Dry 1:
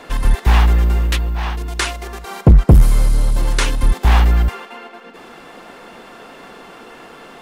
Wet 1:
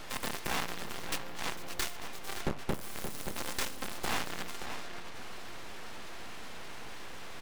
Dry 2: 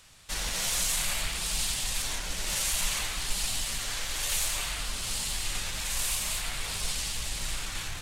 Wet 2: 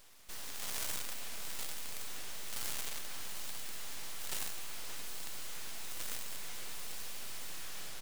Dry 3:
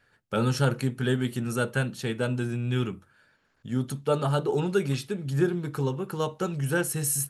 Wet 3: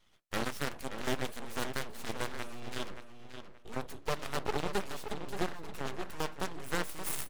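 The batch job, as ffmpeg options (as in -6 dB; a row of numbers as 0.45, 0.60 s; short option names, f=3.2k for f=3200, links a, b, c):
-filter_complex "[0:a]highpass=f=170:w=0.5412,highpass=f=170:w=1.3066,acontrast=41,alimiter=limit=-10.5dB:level=0:latency=1:release=480,aeval=exprs='clip(val(0),-1,0.0188)':c=same,aeval=exprs='0.299*(cos(1*acos(clip(val(0)/0.299,-1,1)))-cos(1*PI/2))+0.0168*(cos(6*acos(clip(val(0)/0.299,-1,1)))-cos(6*PI/2))+0.0944*(cos(7*acos(clip(val(0)/0.299,-1,1)))-cos(7*PI/2))':c=same,aeval=exprs='abs(val(0))':c=same,asplit=2[a][b];[b]adelay=576,lowpass=f=4.3k:p=1,volume=-8.5dB,asplit=2[c][d];[d]adelay=576,lowpass=f=4.3k:p=1,volume=0.27,asplit=2[e][f];[f]adelay=576,lowpass=f=4.3k:p=1,volume=0.27[g];[c][e][g]amix=inputs=3:normalize=0[h];[a][h]amix=inputs=2:normalize=0,volume=-8.5dB"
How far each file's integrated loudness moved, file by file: -23.0, -12.0, -10.5 LU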